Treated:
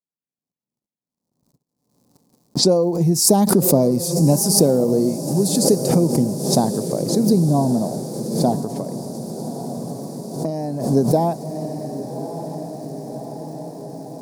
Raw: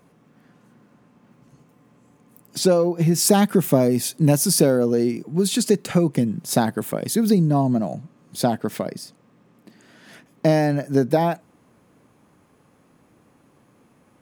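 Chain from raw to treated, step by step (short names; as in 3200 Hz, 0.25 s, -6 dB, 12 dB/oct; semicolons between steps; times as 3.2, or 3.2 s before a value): low-pass opened by the level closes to 1000 Hz, open at -18 dBFS; crackle 240/s -39 dBFS; band shelf 2100 Hz -16 dB; diffused feedback echo 1.157 s, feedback 70%, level -10.5 dB; 8.58–10.89 compressor 6:1, threshold -23 dBFS, peak gain reduction 11 dB; gate -47 dBFS, range -48 dB; backwards sustainer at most 72 dB/s; gain +1 dB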